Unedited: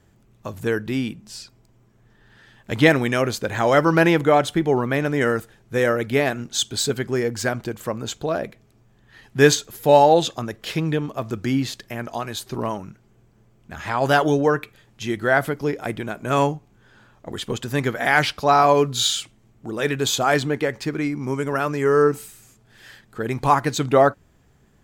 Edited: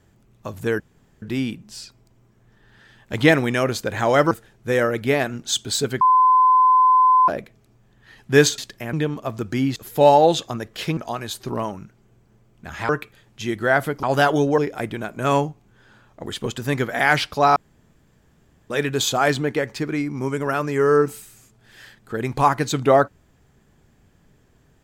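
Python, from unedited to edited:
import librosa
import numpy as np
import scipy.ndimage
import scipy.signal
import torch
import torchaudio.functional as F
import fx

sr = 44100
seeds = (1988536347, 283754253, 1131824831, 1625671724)

y = fx.edit(x, sr, fx.insert_room_tone(at_s=0.8, length_s=0.42),
    fx.cut(start_s=3.89, length_s=1.48),
    fx.bleep(start_s=7.07, length_s=1.27, hz=1020.0, db=-11.0),
    fx.swap(start_s=9.64, length_s=1.21, other_s=11.68, other_length_s=0.35),
    fx.move(start_s=13.95, length_s=0.55, to_s=15.64),
    fx.room_tone_fill(start_s=18.62, length_s=1.14), tone=tone)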